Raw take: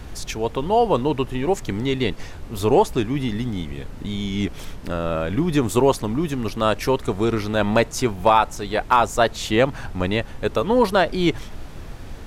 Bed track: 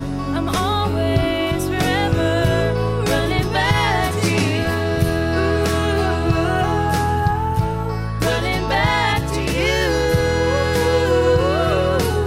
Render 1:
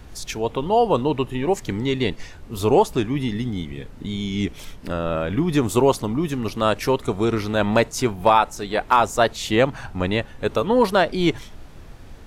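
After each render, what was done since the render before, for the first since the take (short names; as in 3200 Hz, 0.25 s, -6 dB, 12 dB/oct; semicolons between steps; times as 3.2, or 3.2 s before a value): noise print and reduce 6 dB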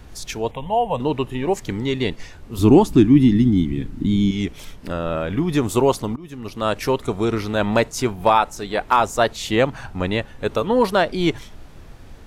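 0.51–1 fixed phaser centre 1300 Hz, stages 6; 2.58–4.31 resonant low shelf 390 Hz +7.5 dB, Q 3; 6.16–6.81 fade in, from -21 dB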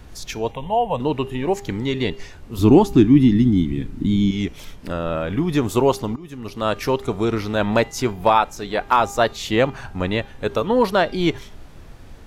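de-hum 401.1 Hz, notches 19; dynamic EQ 8900 Hz, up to -6 dB, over -52 dBFS, Q 2.3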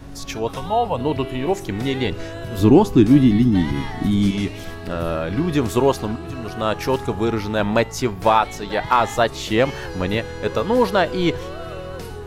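add bed track -14.5 dB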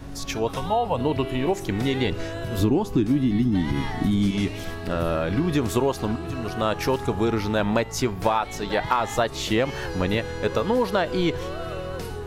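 compressor 6:1, threshold -18 dBFS, peak gain reduction 11 dB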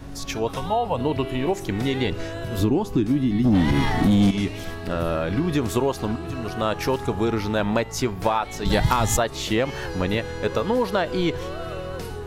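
3.44–4.31 sample leveller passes 2; 8.65–9.17 tone controls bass +15 dB, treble +14 dB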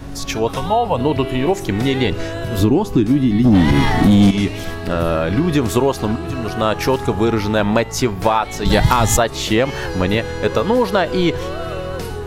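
gain +6.5 dB; limiter -1 dBFS, peak gain reduction 1 dB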